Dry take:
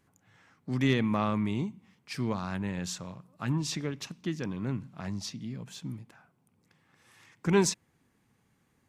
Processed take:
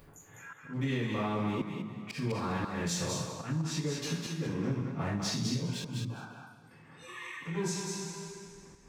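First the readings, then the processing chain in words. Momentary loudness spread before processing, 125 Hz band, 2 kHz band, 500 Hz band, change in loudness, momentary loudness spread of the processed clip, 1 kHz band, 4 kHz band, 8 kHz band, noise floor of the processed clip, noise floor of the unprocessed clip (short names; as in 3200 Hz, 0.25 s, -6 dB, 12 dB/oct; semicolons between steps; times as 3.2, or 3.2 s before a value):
15 LU, -0.5 dB, -1.0 dB, -3.5 dB, -2.5 dB, 16 LU, -1.0 dB, +0.5 dB, 0.0 dB, -57 dBFS, -72 dBFS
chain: Wiener smoothing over 9 samples; spectral noise reduction 22 dB; dynamic EQ 160 Hz, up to +5 dB, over -44 dBFS, Q 4; in parallel at -2 dB: upward compressor, threshold -31 dBFS; on the sum: two-slope reverb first 0.54 s, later 2.1 s, from -20 dB, DRR -10 dB; compressor 16:1, threshold -22 dBFS, peak gain reduction 19 dB; auto swell 0.153 s; on a send: thinning echo 0.204 s, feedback 21%, high-pass 470 Hz, level -3.5 dB; on the sum: gain -6.5 dB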